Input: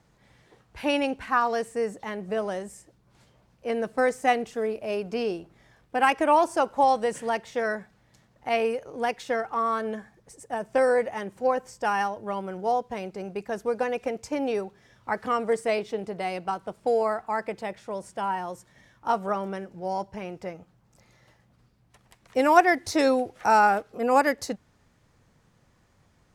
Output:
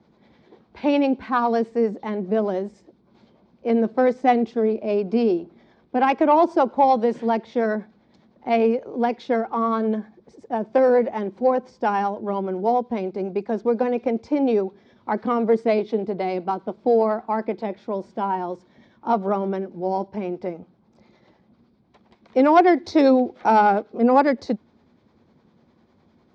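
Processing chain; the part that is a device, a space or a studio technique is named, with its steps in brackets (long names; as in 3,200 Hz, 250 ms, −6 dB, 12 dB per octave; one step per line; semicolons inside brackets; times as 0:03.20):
guitar amplifier with harmonic tremolo (two-band tremolo in antiphase 9.9 Hz, depth 50%, crossover 420 Hz; soft clipping −12.5 dBFS, distortion −19 dB; loudspeaker in its box 93–4,200 Hz, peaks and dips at 120 Hz −10 dB, 230 Hz +9 dB, 360 Hz +7 dB, 1,300 Hz −5 dB, 1,800 Hz −8 dB, 2,800 Hz −9 dB)
level +7 dB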